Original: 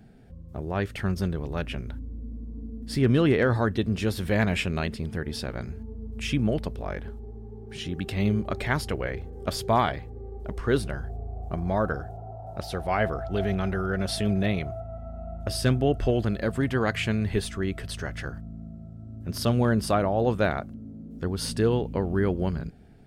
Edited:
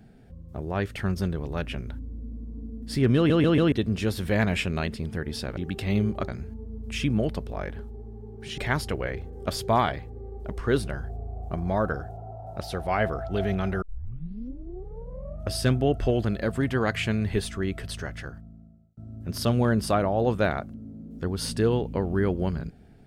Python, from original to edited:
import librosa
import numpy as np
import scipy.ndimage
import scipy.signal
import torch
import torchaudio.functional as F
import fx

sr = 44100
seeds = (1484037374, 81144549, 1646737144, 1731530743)

y = fx.edit(x, sr, fx.stutter_over(start_s=3.16, slice_s=0.14, count=4),
    fx.move(start_s=7.87, length_s=0.71, to_s=5.57),
    fx.tape_start(start_s=13.82, length_s=1.71),
    fx.fade_out_span(start_s=17.91, length_s=1.06), tone=tone)